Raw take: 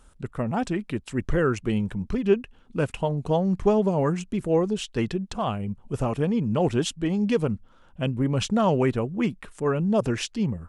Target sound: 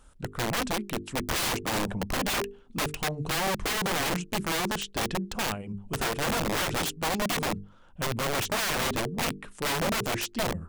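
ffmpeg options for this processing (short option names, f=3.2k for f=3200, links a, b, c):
-filter_complex "[0:a]asettb=1/sr,asplit=3[a][b][c];[a]atrim=end=1.254[d];[b]atrim=start=1.25:end=2.4,asetpts=PTS-STARTPTS,afade=t=in:d=0.004:c=qsin,afade=t=out:st=1.146:d=0.004:c=qsin,equalizer=f=670:t=o:w=1:g=13.5[e];[c]atrim=start=2.396[f];[d][e]acrossfade=d=0.004:c1=hsin:c2=qsin[g];[g][f]acrossfade=d=0.004:c1=qsin:c2=hsin,bandreject=f=50:t=h:w=6,bandreject=f=100:t=h:w=6,bandreject=f=150:t=h:w=6,bandreject=f=200:t=h:w=6,bandreject=f=250:t=h:w=6,bandreject=f=300:t=h:w=6,bandreject=f=350:t=h:w=6,bandreject=f=400:t=h:w=6,bandreject=f=450:t=h:w=6,aeval=exprs='(mod(12.6*val(0)+1,2)-1)/12.6':c=same,volume=-1dB"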